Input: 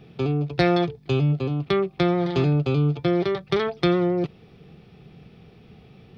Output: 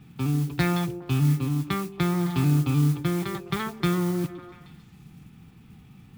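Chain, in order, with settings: high shelf 2600 Hz -8 dB; modulation noise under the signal 22 dB; band shelf 510 Hz -15 dB 1.1 oct; delay with a stepping band-pass 0.138 s, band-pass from 300 Hz, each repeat 0.7 oct, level -8 dB

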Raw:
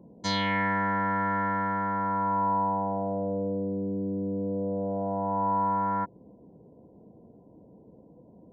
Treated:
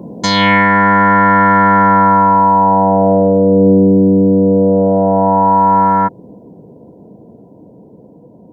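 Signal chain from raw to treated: Doppler pass-by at 1.98, 5 m/s, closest 4.4 m; HPF 92 Hz; maximiser +31 dB; gain -1 dB

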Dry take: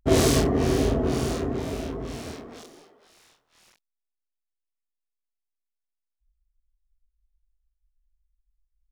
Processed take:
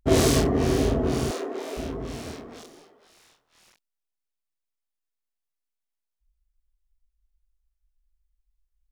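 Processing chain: 1.31–1.77 HPF 340 Hz 24 dB/oct

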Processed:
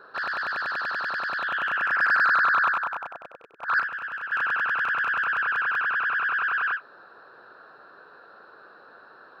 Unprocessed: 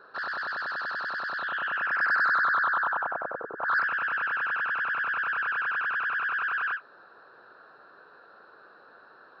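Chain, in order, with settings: rattling part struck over -51 dBFS, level -27 dBFS; 2.72–4.32 upward expander 2.5:1, over -40 dBFS; gain +3.5 dB

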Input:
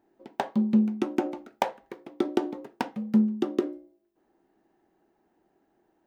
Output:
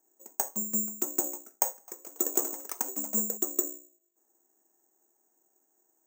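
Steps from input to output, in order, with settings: three-band isolator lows -20 dB, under 270 Hz, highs -16 dB, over 2400 Hz; 1.69–3.69 echoes that change speed 0.188 s, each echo +5 st, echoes 3, each echo -6 dB; careless resampling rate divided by 6×, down none, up zero stuff; gain -8 dB

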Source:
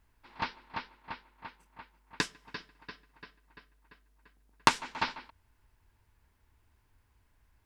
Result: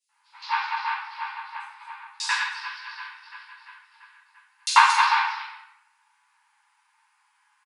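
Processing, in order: reverse delay 0.133 s, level -5 dB; brick-wall FIR band-pass 780–11000 Hz; bands offset in time highs, lows 90 ms, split 3900 Hz; shoebox room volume 250 m³, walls mixed, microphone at 4.4 m; gain -1 dB

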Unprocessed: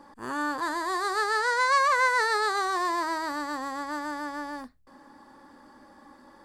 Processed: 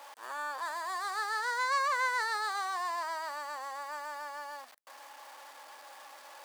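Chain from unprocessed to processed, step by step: zero-crossing step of -37.5 dBFS; Chebyshev high-pass 610 Hz, order 3; gain -7 dB

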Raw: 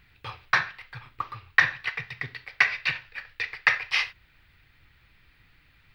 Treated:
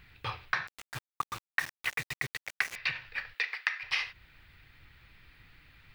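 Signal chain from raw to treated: 3.33–3.82 HPF 390 Hz -> 1400 Hz 12 dB/oct; compressor 16:1, threshold -29 dBFS, peak gain reduction 17.5 dB; 0.67–2.76 sample gate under -37 dBFS; gain +2 dB

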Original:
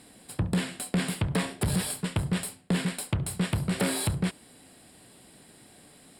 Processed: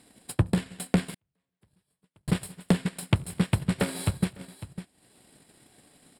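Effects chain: tapped delay 87/173/254/552 ms -18/-13/-16/-13 dB; 1.14–2.28 flipped gate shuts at -27 dBFS, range -39 dB; transient shaper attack +12 dB, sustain -9 dB; gain -5.5 dB

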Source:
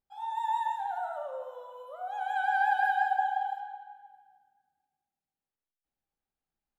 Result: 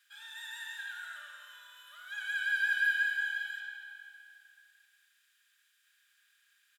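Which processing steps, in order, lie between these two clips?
per-bin compression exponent 0.6; inverse Chebyshev high-pass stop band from 850 Hz, stop band 40 dB; comb 4.9 ms, depth 59%; gain +4 dB

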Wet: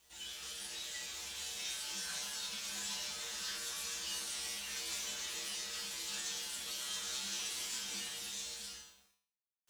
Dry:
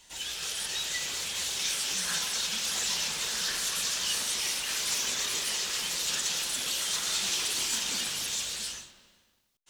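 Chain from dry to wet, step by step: bit-crush 9-bit; resonator 67 Hz, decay 0.51 s, harmonics odd, mix 90%; gain +1 dB

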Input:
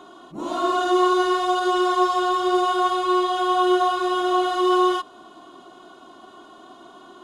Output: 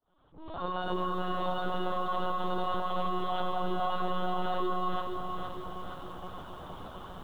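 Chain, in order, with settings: opening faded in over 2.41 s; limiter -16 dBFS, peak gain reduction 6.5 dB; compressor 8:1, threshold -29 dBFS, peak gain reduction 10 dB; LPC vocoder at 8 kHz pitch kept; lo-fi delay 0.469 s, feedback 55%, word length 10-bit, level -5.5 dB

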